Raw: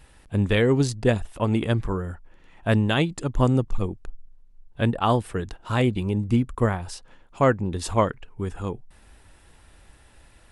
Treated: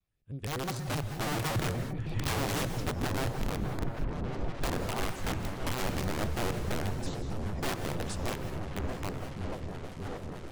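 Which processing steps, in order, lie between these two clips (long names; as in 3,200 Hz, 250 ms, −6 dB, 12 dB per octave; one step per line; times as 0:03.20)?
source passing by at 0:02.55, 49 m/s, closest 4.9 metres
camcorder AGC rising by 26 dB per second
parametric band 130 Hz +12.5 dB 0.23 octaves
in parallel at +2 dB: downward compressor 16 to 1, threshold −31 dBFS, peak gain reduction 18.5 dB
on the sum: rotating-speaker cabinet horn 1.2 Hz, later 7.5 Hz, at 0:01.71
wrap-around overflow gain 19 dB
on a send: echo whose low-pass opens from repeat to repeat 608 ms, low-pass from 200 Hz, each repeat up 1 octave, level 0 dB
on the sum: reverb whose tail is shaped and stops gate 230 ms rising, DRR 8.5 dB
pitch modulation by a square or saw wave square 6.3 Hz, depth 250 cents
level −9 dB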